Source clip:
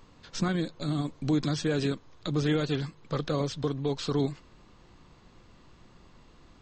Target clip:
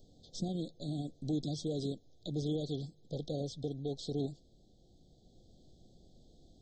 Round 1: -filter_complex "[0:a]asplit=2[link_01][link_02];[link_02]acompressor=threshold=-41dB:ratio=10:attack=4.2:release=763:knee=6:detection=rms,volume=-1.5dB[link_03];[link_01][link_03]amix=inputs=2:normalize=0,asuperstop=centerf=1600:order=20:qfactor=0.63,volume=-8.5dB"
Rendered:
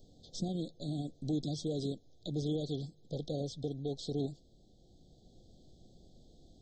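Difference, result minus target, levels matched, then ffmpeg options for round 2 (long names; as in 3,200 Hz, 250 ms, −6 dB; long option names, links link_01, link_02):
downward compressor: peak gain reduction −8.5 dB
-filter_complex "[0:a]asplit=2[link_01][link_02];[link_02]acompressor=threshold=-50.5dB:ratio=10:attack=4.2:release=763:knee=6:detection=rms,volume=-1.5dB[link_03];[link_01][link_03]amix=inputs=2:normalize=0,asuperstop=centerf=1600:order=20:qfactor=0.63,volume=-8.5dB"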